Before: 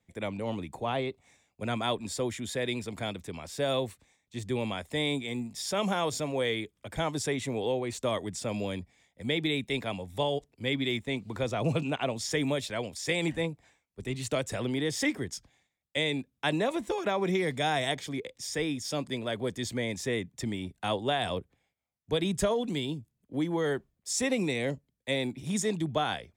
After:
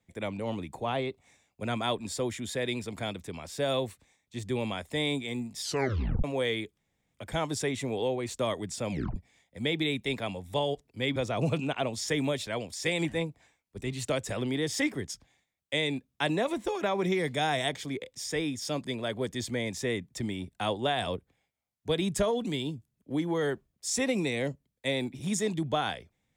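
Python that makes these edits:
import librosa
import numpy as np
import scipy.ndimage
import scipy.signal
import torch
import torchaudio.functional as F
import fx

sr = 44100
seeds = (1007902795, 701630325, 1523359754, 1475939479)

y = fx.edit(x, sr, fx.tape_stop(start_s=5.61, length_s=0.63),
    fx.insert_room_tone(at_s=6.78, length_s=0.36),
    fx.tape_stop(start_s=8.55, length_s=0.25),
    fx.cut(start_s=10.8, length_s=0.59), tone=tone)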